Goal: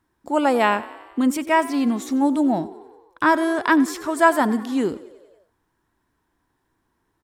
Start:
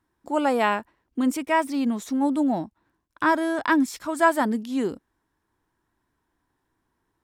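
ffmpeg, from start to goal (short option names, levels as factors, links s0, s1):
-filter_complex "[0:a]asplit=7[s0][s1][s2][s3][s4][s5][s6];[s1]adelay=92,afreqshift=31,volume=0.119[s7];[s2]adelay=184,afreqshift=62,volume=0.0759[s8];[s3]adelay=276,afreqshift=93,volume=0.0484[s9];[s4]adelay=368,afreqshift=124,volume=0.0313[s10];[s5]adelay=460,afreqshift=155,volume=0.02[s11];[s6]adelay=552,afreqshift=186,volume=0.0127[s12];[s0][s7][s8][s9][s10][s11][s12]amix=inputs=7:normalize=0,volume=1.5"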